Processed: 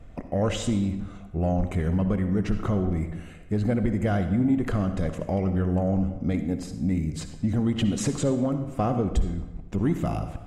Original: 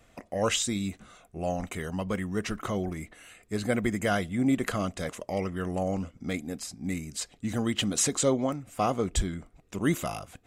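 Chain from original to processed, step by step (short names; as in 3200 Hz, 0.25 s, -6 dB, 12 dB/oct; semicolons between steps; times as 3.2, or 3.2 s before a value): tilt -3.5 dB/oct; compressor 3:1, threshold -24 dBFS, peak gain reduction 13.5 dB; soft clip -17 dBFS, distortion -21 dB; reverb RT60 1.1 s, pre-delay 52 ms, DRR 8.5 dB; gain +3 dB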